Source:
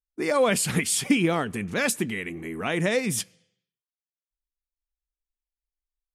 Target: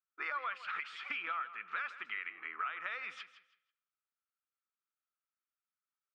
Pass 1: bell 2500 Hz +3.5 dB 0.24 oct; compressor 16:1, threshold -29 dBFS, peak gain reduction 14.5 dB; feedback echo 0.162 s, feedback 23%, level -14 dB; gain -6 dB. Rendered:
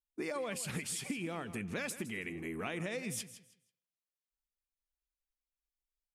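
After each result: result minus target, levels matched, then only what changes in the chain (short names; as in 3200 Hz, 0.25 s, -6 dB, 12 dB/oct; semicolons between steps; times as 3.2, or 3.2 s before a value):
1000 Hz band -8.0 dB; 4000 Hz band +3.0 dB
add first: resonant high-pass 1300 Hz, resonance Q 9.5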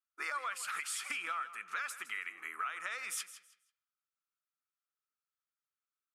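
4000 Hz band +3.0 dB
add after compressor: LPF 3400 Hz 24 dB/oct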